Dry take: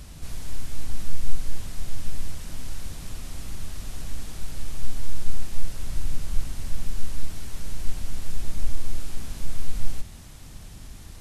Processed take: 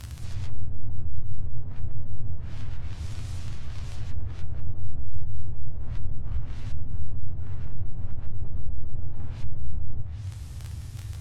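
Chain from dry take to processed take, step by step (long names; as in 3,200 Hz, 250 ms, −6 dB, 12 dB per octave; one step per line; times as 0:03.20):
surface crackle 17 per second −24 dBFS
brickwall limiter −14.5 dBFS, peak gain reduction 9.5 dB
tuned comb filter 82 Hz, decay 0.37 s, harmonics all, mix 70%
treble cut that deepens with the level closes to 670 Hz, closed at −20 dBFS
noise in a band 60–120 Hz −40 dBFS
level +4 dB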